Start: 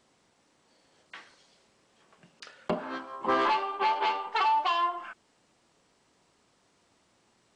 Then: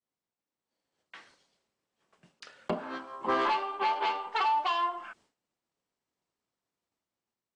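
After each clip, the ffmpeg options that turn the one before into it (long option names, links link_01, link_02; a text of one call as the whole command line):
ffmpeg -i in.wav -af "agate=range=-33dB:threshold=-55dB:ratio=3:detection=peak,dynaudnorm=framelen=390:gausssize=5:maxgain=6dB,volume=-8dB" out.wav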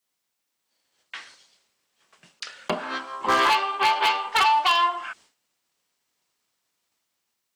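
ffmpeg -i in.wav -af "tiltshelf=frequency=1100:gain=-7,aeval=exprs='0.0891*(abs(mod(val(0)/0.0891+3,4)-2)-1)':channel_layout=same,volume=8.5dB" out.wav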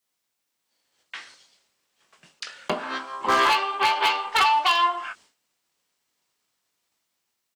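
ffmpeg -i in.wav -filter_complex "[0:a]asplit=2[link_01][link_02];[link_02]adelay=20,volume=-12dB[link_03];[link_01][link_03]amix=inputs=2:normalize=0" out.wav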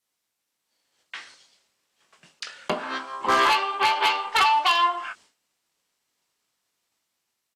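ffmpeg -i in.wav -af "aresample=32000,aresample=44100" out.wav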